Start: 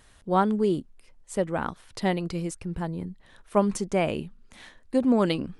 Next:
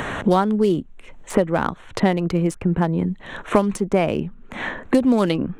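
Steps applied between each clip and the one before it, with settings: Wiener smoothing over 9 samples; three-band squash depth 100%; gain +6 dB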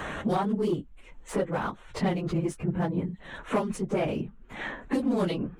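phase scrambler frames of 50 ms; soft clip -10 dBFS, distortion -17 dB; gain -7.5 dB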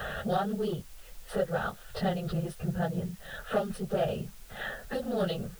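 fixed phaser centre 1500 Hz, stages 8; in parallel at -6 dB: requantised 8-bit, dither triangular; on the sum: gain -2 dB

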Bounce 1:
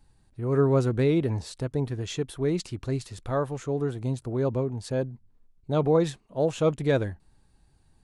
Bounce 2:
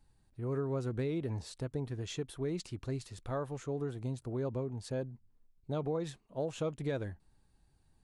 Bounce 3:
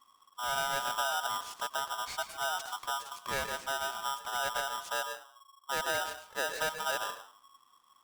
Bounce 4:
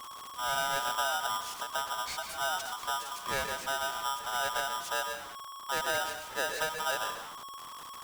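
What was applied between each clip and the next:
compressor, threshold -24 dBFS, peak gain reduction 7.5 dB; gain -7 dB
on a send at -8.5 dB: reverb RT60 0.35 s, pre-delay 85 ms; on the sum: polarity switched at an audio rate 1100 Hz; gain +1.5 dB
zero-crossing step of -40 dBFS; ending taper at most 120 dB/s

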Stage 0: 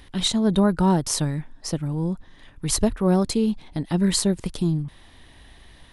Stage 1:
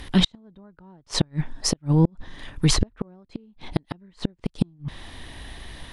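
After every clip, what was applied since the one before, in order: treble ducked by the level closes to 2500 Hz, closed at -17.5 dBFS; flipped gate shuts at -16 dBFS, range -39 dB; gain +9 dB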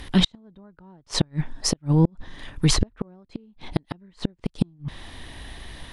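nothing audible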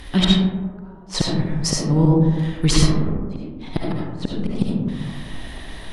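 digital reverb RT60 1.4 s, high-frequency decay 0.3×, pre-delay 30 ms, DRR -3.5 dB

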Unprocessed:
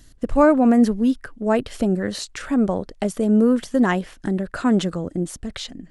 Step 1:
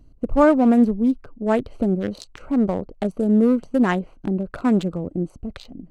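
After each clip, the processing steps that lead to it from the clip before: Wiener smoothing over 25 samples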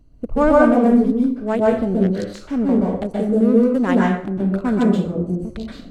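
plate-style reverb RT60 0.59 s, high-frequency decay 0.7×, pre-delay 0.115 s, DRR -3 dB; gain -2 dB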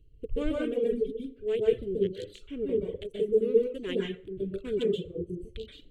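reverb removal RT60 1.4 s; EQ curve 130 Hz 0 dB, 230 Hz -16 dB, 430 Hz +6 dB, 760 Hz -29 dB, 1600 Hz -13 dB, 3200 Hz +8 dB, 5100 Hz -14 dB, 7600 Hz -5 dB; gain -5.5 dB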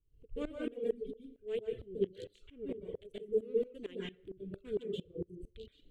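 dB-ramp tremolo swelling 4.4 Hz, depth 21 dB; gain -3 dB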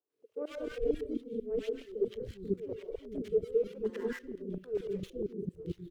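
median filter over 15 samples; spectral gain 3.75–4.31, 810–2100 Hz +8 dB; three bands offset in time mids, highs, lows 0.1/0.49 s, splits 360/1100 Hz; gain +6 dB

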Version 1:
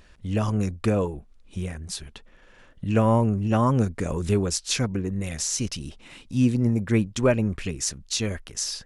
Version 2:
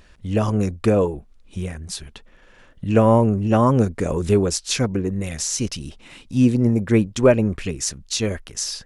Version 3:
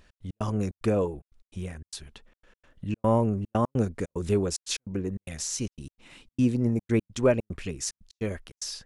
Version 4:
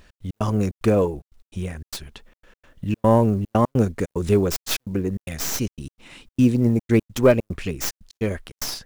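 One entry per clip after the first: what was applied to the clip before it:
dynamic EQ 460 Hz, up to +5 dB, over -33 dBFS, Q 0.77; gain +2.5 dB
step gate "x.x.xxx.xxx" 148 bpm -60 dB; gain -7.5 dB
tracing distortion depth 0.13 ms; companded quantiser 8-bit; gain +6.5 dB

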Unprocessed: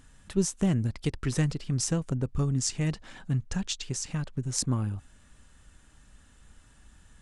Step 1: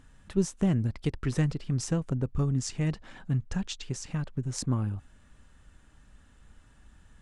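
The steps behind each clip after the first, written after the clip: high shelf 3900 Hz -9 dB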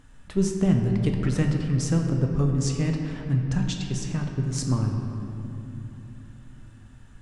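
shoebox room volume 160 m³, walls hard, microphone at 0.35 m; gain +2.5 dB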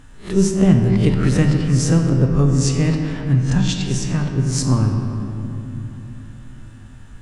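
spectral swells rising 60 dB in 0.31 s; gain +7 dB

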